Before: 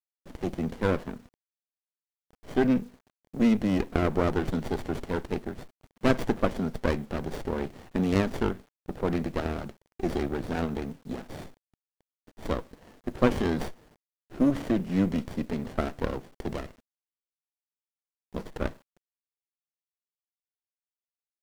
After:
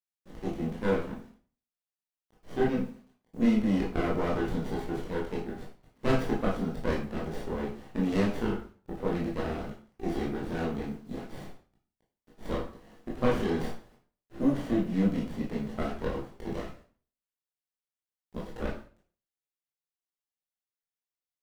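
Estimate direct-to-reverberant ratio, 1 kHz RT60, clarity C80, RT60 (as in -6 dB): -4.5 dB, 0.45 s, 11.0 dB, 0.45 s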